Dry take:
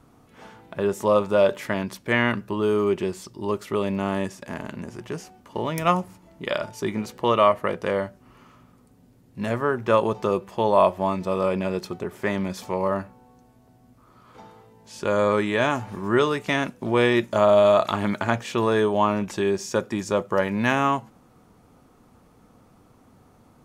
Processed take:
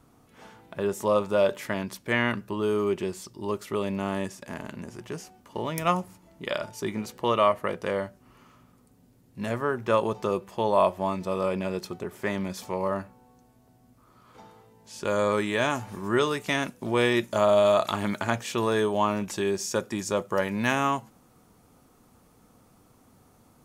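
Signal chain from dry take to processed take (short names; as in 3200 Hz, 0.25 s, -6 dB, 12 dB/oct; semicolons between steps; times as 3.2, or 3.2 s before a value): high shelf 5100 Hz +5.5 dB, from 15.05 s +10.5 dB; gain -4 dB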